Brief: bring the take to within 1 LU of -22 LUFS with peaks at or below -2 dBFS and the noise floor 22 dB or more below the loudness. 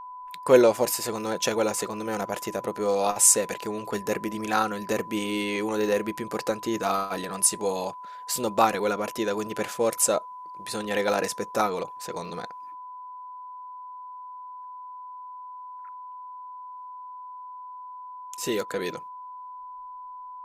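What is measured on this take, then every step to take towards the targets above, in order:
steady tone 1000 Hz; tone level -38 dBFS; loudness -26.0 LUFS; peak -4.0 dBFS; loudness target -22.0 LUFS
-> notch 1000 Hz, Q 30; gain +4 dB; limiter -2 dBFS

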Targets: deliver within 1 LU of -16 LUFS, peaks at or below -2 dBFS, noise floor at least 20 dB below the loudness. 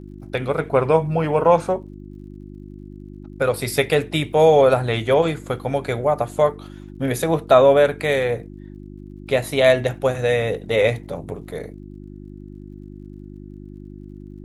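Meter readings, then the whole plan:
ticks 50/s; hum 50 Hz; harmonics up to 350 Hz; hum level -35 dBFS; loudness -19.0 LUFS; peak -1.5 dBFS; loudness target -16.0 LUFS
-> de-click; de-hum 50 Hz, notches 7; gain +3 dB; limiter -2 dBFS

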